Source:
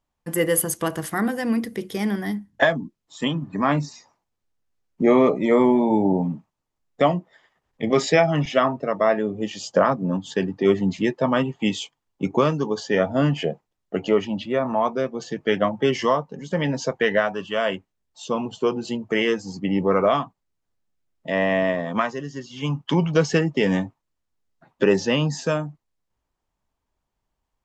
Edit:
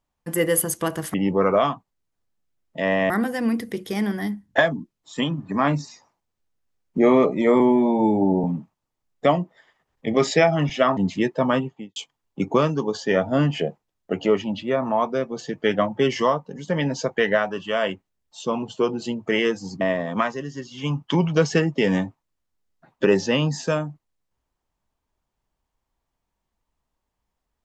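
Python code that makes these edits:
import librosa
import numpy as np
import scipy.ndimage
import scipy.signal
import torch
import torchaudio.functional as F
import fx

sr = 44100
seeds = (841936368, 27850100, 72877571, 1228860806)

y = fx.studio_fade_out(x, sr, start_s=11.34, length_s=0.45)
y = fx.edit(y, sr, fx.stretch_span(start_s=5.64, length_s=0.56, factor=1.5),
    fx.cut(start_s=8.73, length_s=2.07),
    fx.move(start_s=19.64, length_s=1.96, to_s=1.14), tone=tone)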